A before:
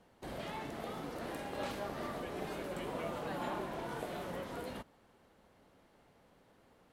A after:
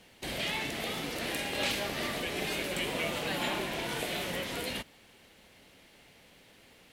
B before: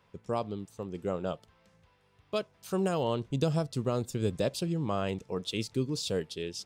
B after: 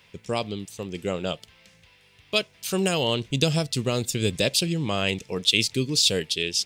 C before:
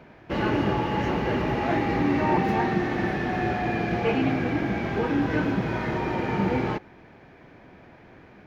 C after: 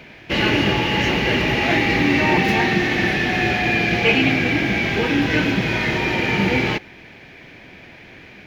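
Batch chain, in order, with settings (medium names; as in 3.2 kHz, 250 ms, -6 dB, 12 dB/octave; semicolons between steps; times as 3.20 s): resonant high shelf 1.7 kHz +10 dB, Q 1.5; trim +5 dB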